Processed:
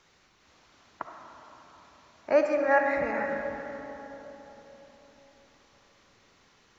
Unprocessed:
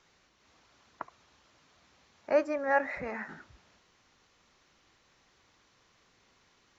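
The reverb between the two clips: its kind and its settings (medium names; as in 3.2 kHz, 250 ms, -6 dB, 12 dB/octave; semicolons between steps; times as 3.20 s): algorithmic reverb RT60 4.2 s, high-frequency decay 0.4×, pre-delay 20 ms, DRR 3 dB; trim +3 dB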